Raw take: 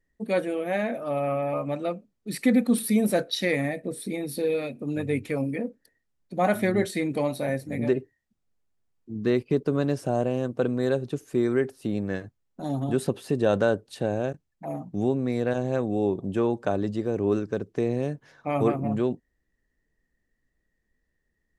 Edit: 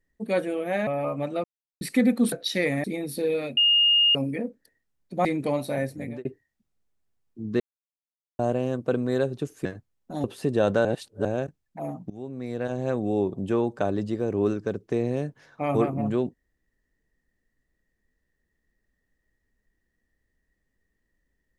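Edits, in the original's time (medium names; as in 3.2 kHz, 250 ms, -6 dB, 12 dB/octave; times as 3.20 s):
0.87–1.36 s: delete
1.93–2.30 s: mute
2.81–3.19 s: delete
3.71–4.04 s: delete
4.77–5.35 s: bleep 2.84 kHz -16 dBFS
6.45–6.96 s: delete
7.64–7.96 s: fade out
9.31–10.10 s: mute
11.36–12.14 s: delete
12.73–13.10 s: delete
13.71–14.11 s: reverse
14.96–15.84 s: fade in, from -20.5 dB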